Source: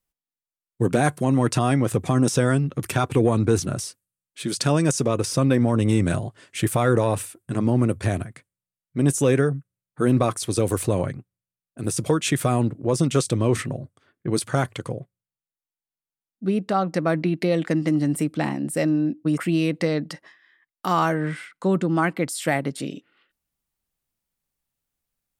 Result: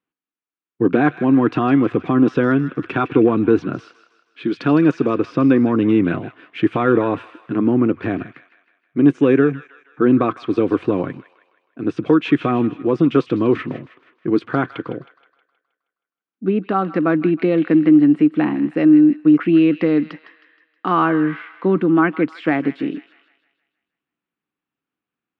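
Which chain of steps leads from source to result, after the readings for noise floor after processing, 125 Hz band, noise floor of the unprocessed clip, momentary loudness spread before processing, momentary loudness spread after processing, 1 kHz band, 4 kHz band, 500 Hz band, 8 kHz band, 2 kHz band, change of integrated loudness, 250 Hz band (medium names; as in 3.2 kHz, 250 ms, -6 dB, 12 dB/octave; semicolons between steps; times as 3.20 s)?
under -85 dBFS, -3.0 dB, under -85 dBFS, 11 LU, 13 LU, +3.5 dB, no reading, +4.5 dB, under -25 dB, +4.0 dB, +5.5 dB, +8.5 dB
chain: cabinet simulation 230–2600 Hz, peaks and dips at 300 Hz +7 dB, 590 Hz -10 dB, 860 Hz -5 dB, 2 kHz -6 dB; feedback echo behind a high-pass 158 ms, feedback 49%, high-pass 1.5 kHz, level -11.5 dB; trim +6.5 dB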